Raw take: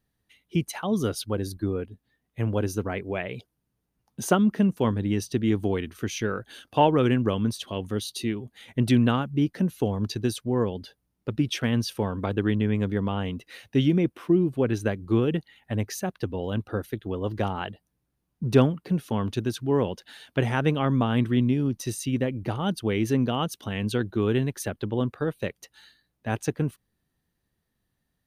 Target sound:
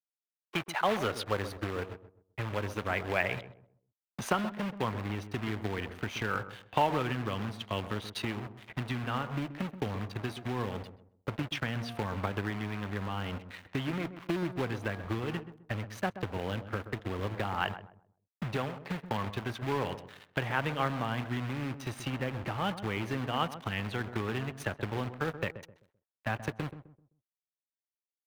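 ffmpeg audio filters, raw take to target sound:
ffmpeg -i in.wav -filter_complex "[0:a]bandreject=frequency=235.3:width_type=h:width=4,bandreject=frequency=470.6:width_type=h:width=4,bandreject=frequency=705.9:width_type=h:width=4,bandreject=frequency=941.2:width_type=h:width=4,bandreject=frequency=1176.5:width_type=h:width=4,bandreject=frequency=1411.8:width_type=h:width=4,bandreject=frequency=1647.1:width_type=h:width=4,acrusher=bits=3:mode=log:mix=0:aa=0.000001,asubboost=boost=8:cutoff=170,acompressor=threshold=-22dB:ratio=10,aeval=exprs='sgn(val(0))*max(abs(val(0))-0.00631,0)':channel_layout=same,acrossover=split=480 3200:gain=0.0891 1 0.141[link_01][link_02][link_03];[link_01][link_02][link_03]amix=inputs=3:normalize=0,asplit=2[link_04][link_05];[link_05]adelay=129,lowpass=frequency=880:poles=1,volume=-10.5dB,asplit=2[link_06][link_07];[link_07]adelay=129,lowpass=frequency=880:poles=1,volume=0.33,asplit=2[link_08][link_09];[link_09]adelay=129,lowpass=frequency=880:poles=1,volume=0.33,asplit=2[link_10][link_11];[link_11]adelay=129,lowpass=frequency=880:poles=1,volume=0.33[link_12];[link_06][link_08][link_10][link_12]amix=inputs=4:normalize=0[link_13];[link_04][link_13]amix=inputs=2:normalize=0,volume=8.5dB" out.wav

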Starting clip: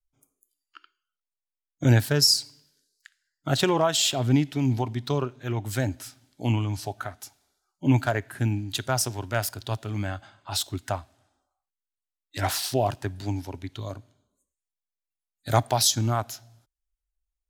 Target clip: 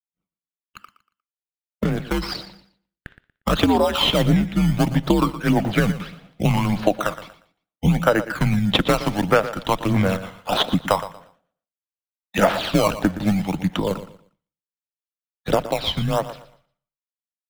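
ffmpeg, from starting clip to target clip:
ffmpeg -i in.wav -filter_complex "[0:a]acrossover=split=220|1400[link_01][link_02][link_03];[link_03]acrusher=bits=4:mode=log:mix=0:aa=0.000001[link_04];[link_01][link_02][link_04]amix=inputs=3:normalize=0,highpass=frequency=190:width_type=q:width=0.5412,highpass=frequency=190:width_type=q:width=1.307,lowpass=frequency=3500:width_type=q:width=0.5176,lowpass=frequency=3500:width_type=q:width=0.7071,lowpass=frequency=3500:width_type=q:width=1.932,afreqshift=-96,asplit=2[link_05][link_06];[link_06]acrusher=samples=19:mix=1:aa=0.000001:lfo=1:lforange=19:lforate=0.71,volume=-4dB[link_07];[link_05][link_07]amix=inputs=2:normalize=0,aphaser=in_gain=1:out_gain=1:delay=1:decay=0.51:speed=1.6:type=sinusoidal,acompressor=threshold=-23dB:ratio=16,lowshelf=frequency=190:gain=-4.5,agate=range=-33dB:threshold=-57dB:ratio=3:detection=peak,dynaudnorm=framelen=880:gausssize=7:maxgain=6dB,aecho=1:1:118|236|354:0.2|0.0519|0.0135,volume=5.5dB" out.wav

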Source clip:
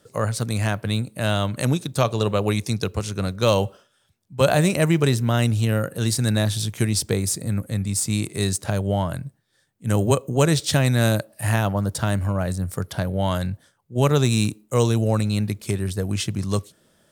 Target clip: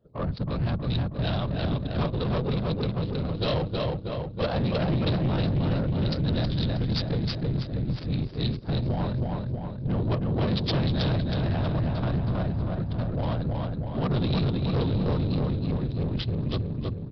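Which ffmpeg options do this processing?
ffmpeg -i in.wav -af "afftfilt=real='hypot(re,im)*cos(2*PI*random(0))':imag='hypot(re,im)*sin(2*PI*random(1))':win_size=512:overlap=0.75,equalizer=frequency=125:width_type=o:width=1:gain=7,equalizer=frequency=2000:width_type=o:width=1:gain=-7,equalizer=frequency=4000:width_type=o:width=1:gain=12,aecho=1:1:319|638|957|1276|1595|1914|2233|2552|2871:0.708|0.418|0.246|0.145|0.0858|0.0506|0.0299|0.0176|0.0104,adynamicsmooth=sensitivity=2.5:basefreq=760,aresample=11025,asoftclip=type=tanh:threshold=-20.5dB,aresample=44100" out.wav

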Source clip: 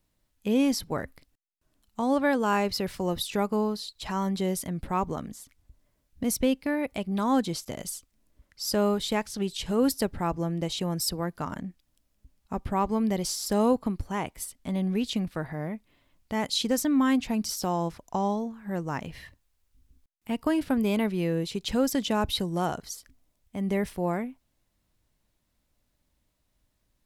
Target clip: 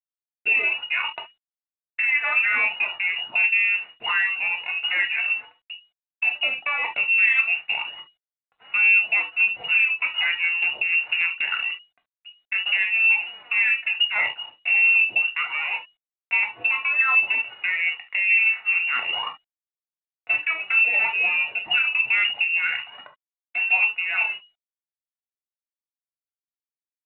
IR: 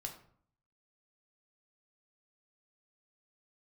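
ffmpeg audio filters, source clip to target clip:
-filter_complex "[0:a]aeval=exprs='sgn(val(0))*max(abs(val(0))-0.00501,0)':channel_layout=same,areverse,acompressor=mode=upward:threshold=-27dB:ratio=2.5,areverse,aphaser=in_gain=1:out_gain=1:delay=5:decay=0.64:speed=0.27:type=sinusoidal,asplit=2[link_01][link_02];[link_02]acompressor=threshold=-32dB:ratio=5,volume=0.5dB[link_03];[link_01][link_03]amix=inputs=2:normalize=0,lowpass=frequency=2500:width_type=q:width=0.5098,lowpass=frequency=2500:width_type=q:width=0.6013,lowpass=frequency=2500:width_type=q:width=0.9,lowpass=frequency=2500:width_type=q:width=2.563,afreqshift=-2900,adynamicequalizer=threshold=0.00282:dfrequency=900:dqfactor=4.8:tfrequency=900:tqfactor=4.8:attack=5:release=100:ratio=0.375:range=2.5:mode=boostabove:tftype=bell,asoftclip=type=tanh:threshold=-6dB,highpass=frequency=390:poles=1,alimiter=limit=-14.5dB:level=0:latency=1:release=236[link_04];[1:a]atrim=start_sample=2205,atrim=end_sample=3528[link_05];[link_04][link_05]afir=irnorm=-1:irlink=0,volume=5.5dB" -ar 8000 -c:a adpcm_g726 -b:a 40k

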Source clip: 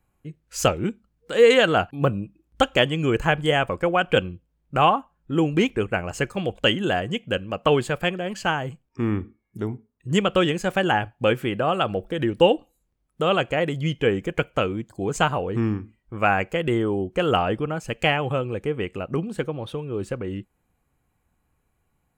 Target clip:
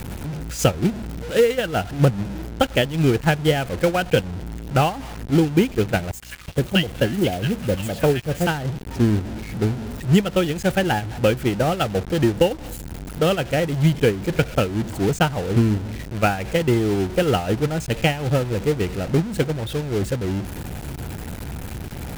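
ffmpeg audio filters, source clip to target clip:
ffmpeg -i in.wav -filter_complex "[0:a]aeval=exprs='val(0)+0.5*0.112*sgn(val(0))':channel_layout=same,highpass=59,equalizer=frequency=1100:width=7.2:gain=-10.5,asettb=1/sr,asplit=3[link_01][link_02][link_03];[link_01]atrim=end=6.114[link_04];[link_02]atrim=start=6.11:end=8.47,asetpts=PTS-STARTPTS,afade=type=in:duration=0.004:curve=qsin,afade=type=out:start_time=2.356:duration=0.004:curve=qsin,acrossover=split=1100|6000[link_05][link_06][link_07];[link_06]adelay=110[link_08];[link_05]adelay=370[link_09];[link_09][link_08][link_07]amix=inputs=3:normalize=0,atrim=end_sample=104076[link_10];[link_03]atrim=start=8.466[link_11];[link_04][link_10]acrossfade=duration=0.004:curve1=hsin:curve2=qsin[link_12];[link_12][link_11]acrossfade=duration=0.004:curve1=qsin:curve2=hsin,acompressor=threshold=-19dB:ratio=16,acrusher=bits=5:mode=log:mix=0:aa=0.000001,agate=range=-16dB:threshold=-21dB:ratio=16:detection=peak,aeval=exprs='val(0)+0.00178*(sin(2*PI*60*n/s)+sin(2*PI*2*60*n/s)/2+sin(2*PI*3*60*n/s)/3+sin(2*PI*4*60*n/s)/4+sin(2*PI*5*60*n/s)/5)':channel_layout=same,acrusher=bits=6:mix=0:aa=0.5,lowshelf=frequency=210:gain=10,volume=5.5dB" -ar 44100 -c:a adpcm_ima_wav out.wav

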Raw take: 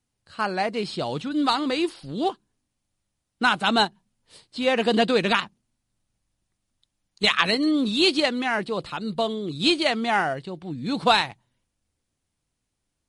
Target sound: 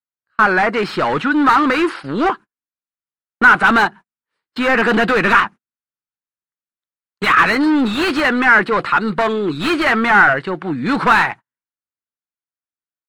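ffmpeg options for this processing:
ffmpeg -i in.wav -filter_complex "[0:a]acontrast=32,agate=range=-39dB:threshold=-35dB:ratio=16:detection=peak,bandreject=frequency=720:width=18,asplit=2[link_01][link_02];[link_02]highpass=frequency=720:poles=1,volume=27dB,asoftclip=type=tanh:threshold=-1dB[link_03];[link_01][link_03]amix=inputs=2:normalize=0,lowpass=frequency=1600:poles=1,volume=-6dB,firequalizer=gain_entry='entry(360,0);entry(580,-4);entry(1400,10);entry(3400,-6);entry(8800,-4)':delay=0.05:min_phase=1,volume=-5dB" out.wav

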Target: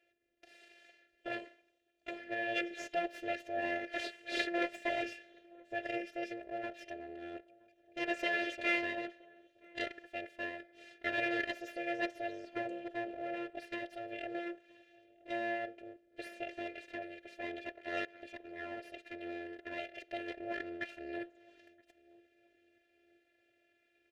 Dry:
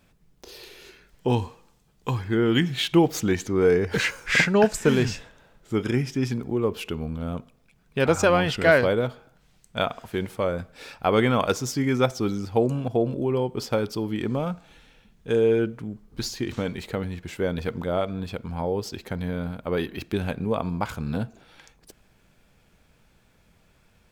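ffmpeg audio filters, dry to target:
ffmpeg -i in.wav -filter_complex "[0:a]asettb=1/sr,asplit=3[link_01][link_02][link_03];[link_01]atrim=end=4.584[link_04];[link_02]atrim=start=4.58:end=5.02,asetpts=PTS-STARTPTS,afade=type=in:duration=0.004:curve=qsin,afade=type=out:start_time=0.436:duration=0.004:curve=qsin,afreqshift=77[link_05];[link_03]atrim=start=5.016[link_06];[link_04][link_05]acrossfade=duration=0.004:curve1=hsin:curve2=qsin[link_07];[link_07][link_06]acrossfade=duration=0.004:curve1=qsin:curve2=hsin,asettb=1/sr,asplit=3[link_08][link_09][link_10];[link_08]atrim=end=17.724[link_11];[link_09]atrim=start=17.72:end=18.23,asetpts=PTS-STARTPTS,afade=type=in:duration=0.004:curve=qsin,afade=type=out:start_time=0.506:duration=0.004:curve=qsin,aeval=exprs='0.237*(cos(1*acos(clip(val(0)/0.237,-1,1)))-cos(1*PI/2))+0.00944*(cos(6*acos(clip(val(0)/0.237,-1,1)))-cos(6*PI/2))+0.0531*(cos(7*acos(clip(val(0)/0.237,-1,1)))-cos(7*PI/2))':channel_layout=same[link_12];[link_10]atrim=start=18.226[link_13];[link_11][link_12]acrossfade=duration=0.004:curve1=hsin:curve2=qsin[link_14];[link_14][link_13]acrossfade=duration=0.004:curve1=qsin:curve2=hsin,aeval=exprs='abs(val(0))':channel_layout=same,afftfilt=real='hypot(re,im)*cos(PI*b)':imag='0':win_size=512:overlap=0.75,asplit=3[link_15][link_16][link_17];[link_15]bandpass=frequency=530:width_type=q:width=8,volume=0dB[link_18];[link_16]bandpass=frequency=1840:width_type=q:width=8,volume=-6dB[link_19];[link_17]bandpass=frequency=2480:width_type=q:width=8,volume=-9dB[link_20];[link_18][link_19][link_20]amix=inputs=3:normalize=0,asplit=2[link_21][link_22];[link_22]adelay=972,lowpass=frequency=900:poles=1,volume=-23dB,asplit=2[link_23][link_24];[link_24]adelay=972,lowpass=frequency=900:poles=1,volume=0.44,asplit=2[link_25][link_26];[link_26]adelay=972,lowpass=frequency=900:poles=1,volume=0.44[link_27];[link_23][link_25][link_27]amix=inputs=3:normalize=0[link_28];[link_21][link_28]amix=inputs=2:normalize=0,volume=9dB" out.wav

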